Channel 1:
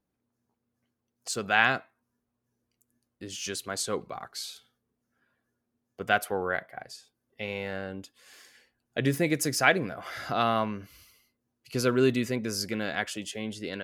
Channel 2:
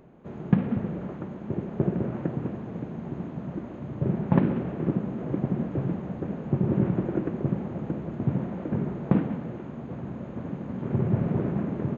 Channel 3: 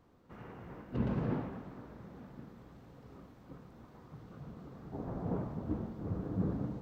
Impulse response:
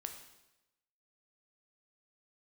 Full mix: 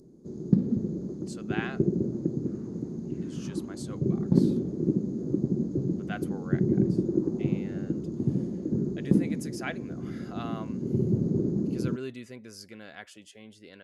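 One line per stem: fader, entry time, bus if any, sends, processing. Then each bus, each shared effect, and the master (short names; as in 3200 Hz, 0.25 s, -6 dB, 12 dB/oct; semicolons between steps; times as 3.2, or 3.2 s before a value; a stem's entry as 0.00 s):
-14.0 dB, 0.00 s, no send, dry
-3.5 dB, 0.00 s, no send, EQ curve 110 Hz 0 dB, 370 Hz +7 dB, 690 Hz -14 dB, 2800 Hz -21 dB, 4800 Hz +14 dB
-15.5 dB, 2.15 s, no send, LFO high-pass saw down 1.1 Hz 470–2700 Hz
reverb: off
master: brick-wall FIR low-pass 12000 Hz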